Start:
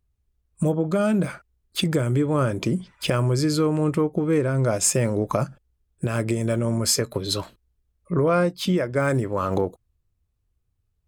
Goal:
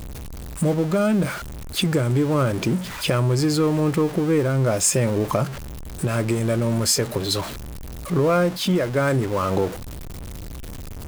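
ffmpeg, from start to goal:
-af "aeval=exprs='val(0)+0.5*0.0422*sgn(val(0))':c=same"

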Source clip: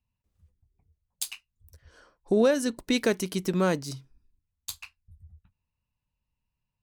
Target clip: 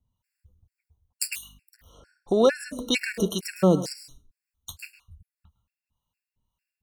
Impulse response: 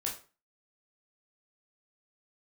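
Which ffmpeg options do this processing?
-filter_complex "[0:a]asettb=1/sr,asplit=3[s0][s1][s2];[s0]atrim=end=1.314[s3];[s1]atrim=start=1.31:end=3.27,asetpts=PTS-STARTPTS,afade=t=in:d=0.004:c=qsin,afade=t=out:st=1.956:d=0.004:c=qsin,aeval=exprs='val(0)+0.001*(sin(2*PI*50*n/s)+sin(2*PI*2*50*n/s)/2+sin(2*PI*3*50*n/s)/3+sin(2*PI*4*50*n/s)/4+sin(2*PI*5*50*n/s)/5)':c=same[s4];[s2]atrim=start=3.266[s5];[s3][s4]acrossfade=d=0.004:c1=hsin:c2=qsin[s6];[s6][s5]acrossfade=d=0.004:c1=qsin:c2=hsin,acrossover=split=640[s7][s8];[s7]aeval=exprs='val(0)*(1-0.7/2+0.7/2*cos(2*PI*1.9*n/s))':c=same[s9];[s8]aeval=exprs='val(0)*(1-0.7/2-0.7/2*cos(2*PI*1.9*n/s))':c=same[s10];[s9][s10]amix=inputs=2:normalize=0,asplit=2[s11][s12];[1:a]atrim=start_sample=2205,highshelf=f=8200:g=11.5,adelay=107[s13];[s12][s13]afir=irnorm=-1:irlink=0,volume=0.168[s14];[s11][s14]amix=inputs=2:normalize=0,afftfilt=real='re*gt(sin(2*PI*2.2*pts/sr)*(1-2*mod(floor(b*sr/1024/1400),2)),0)':imag='im*gt(sin(2*PI*2.2*pts/sr)*(1-2*mod(floor(b*sr/1024/1400),2)),0)':win_size=1024:overlap=0.75,volume=2.66"

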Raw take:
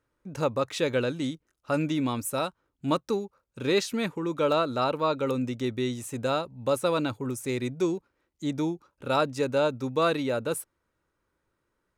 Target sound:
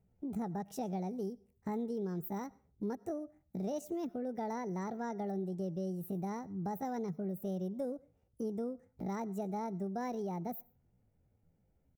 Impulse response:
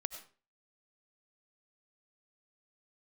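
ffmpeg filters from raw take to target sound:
-filter_complex "[0:a]firequalizer=gain_entry='entry(110,0);entry(220,-9);entry(380,-14);entry(640,-18);entry(1100,-26);entry(2700,-29);entry(4400,-19);entry(6700,-21);entry(12000,-10)':delay=0.05:min_phase=1,acompressor=threshold=0.00355:ratio=3,asetrate=66075,aresample=44100,atempo=0.66742,asplit=2[s0][s1];[1:a]atrim=start_sample=2205[s2];[s1][s2]afir=irnorm=-1:irlink=0,volume=0.251[s3];[s0][s3]amix=inputs=2:normalize=0,volume=2.82"

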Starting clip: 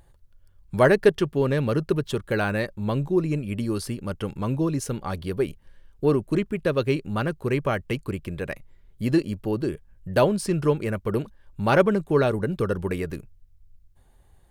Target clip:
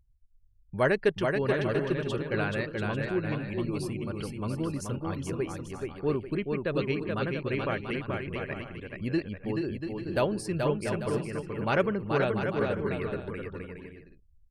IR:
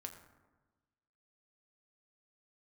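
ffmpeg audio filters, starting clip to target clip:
-filter_complex "[0:a]afftdn=nr=31:nf=-46,adynamicequalizer=threshold=0.00708:dfrequency=2400:dqfactor=0.99:tfrequency=2400:tqfactor=0.99:attack=5:release=100:ratio=0.375:range=2.5:mode=boostabove:tftype=bell,asplit=2[s0][s1];[s1]aecho=0:1:430|688|842.8|935.7|991.4:0.631|0.398|0.251|0.158|0.1[s2];[s0][s2]amix=inputs=2:normalize=0,volume=0.398"

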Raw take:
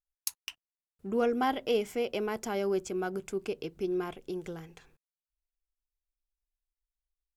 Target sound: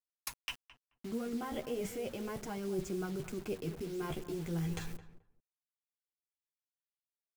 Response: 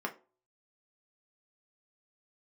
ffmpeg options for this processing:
-filter_complex "[0:a]acrossover=split=2500[s0][s1];[s1]acompressor=threshold=0.00316:ratio=4:attack=1:release=60[s2];[s0][s2]amix=inputs=2:normalize=0,bass=f=250:g=10,treble=f=4000:g=6,alimiter=level_in=1.5:limit=0.0631:level=0:latency=1:release=12,volume=0.668,areverse,acompressor=threshold=0.00501:ratio=16,areverse,flanger=delay=5.5:depth=8:regen=12:speed=0.36:shape=sinusoidal,acrusher=bits=10:mix=0:aa=0.000001,asplit=2[s3][s4];[s4]adelay=216,lowpass=f=1200:p=1,volume=0.237,asplit=2[s5][s6];[s6]adelay=216,lowpass=f=1200:p=1,volume=0.18[s7];[s5][s7]amix=inputs=2:normalize=0[s8];[s3][s8]amix=inputs=2:normalize=0,volume=5.31"

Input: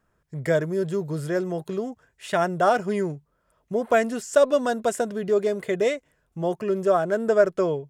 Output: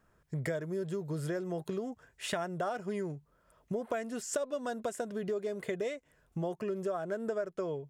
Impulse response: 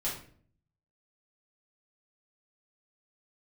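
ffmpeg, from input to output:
-af "acompressor=threshold=0.02:ratio=6,volume=1.12"

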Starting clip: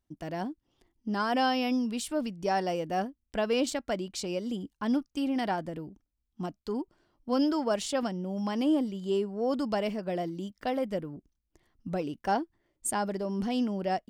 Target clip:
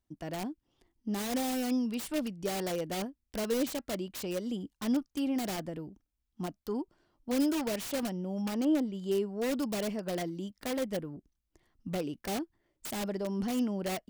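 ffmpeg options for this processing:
-filter_complex "[0:a]asplit=3[s0][s1][s2];[s0]afade=t=out:st=8.41:d=0.02[s3];[s1]aemphasis=mode=reproduction:type=75kf,afade=t=in:st=8.41:d=0.02,afade=t=out:st=8.92:d=0.02[s4];[s2]afade=t=in:st=8.92:d=0.02[s5];[s3][s4][s5]amix=inputs=3:normalize=0,acrossover=split=620[s6][s7];[s7]aeval=exprs='(mod(44.7*val(0)+1,2)-1)/44.7':c=same[s8];[s6][s8]amix=inputs=2:normalize=0,volume=0.841"

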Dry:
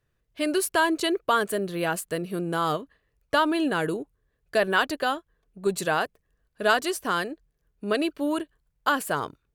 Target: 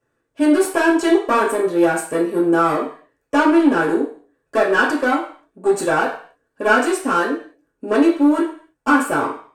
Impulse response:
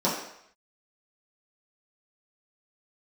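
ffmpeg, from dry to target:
-filter_complex "[0:a]aeval=exprs='clip(val(0),-1,0.0398)':c=same[s0];[1:a]atrim=start_sample=2205,asetrate=66150,aresample=44100[s1];[s0][s1]afir=irnorm=-1:irlink=0,volume=0.708"

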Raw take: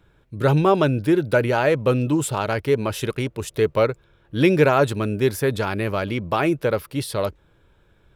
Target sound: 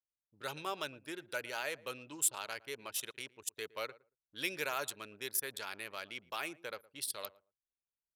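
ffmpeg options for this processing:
-filter_complex "[0:a]anlmdn=25.1,aderivative,asplit=2[s0][s1];[s1]adelay=114,lowpass=f=930:p=1,volume=0.119,asplit=2[s2][s3];[s3]adelay=114,lowpass=f=930:p=1,volume=0.16[s4];[s0][s2][s4]amix=inputs=3:normalize=0,volume=0.794"

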